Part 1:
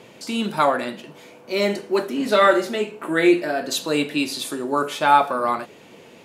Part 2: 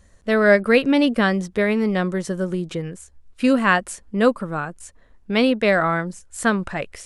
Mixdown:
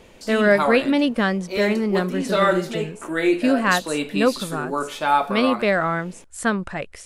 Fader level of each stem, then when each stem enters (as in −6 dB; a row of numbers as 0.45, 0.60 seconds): −3.5, −2.0 decibels; 0.00, 0.00 seconds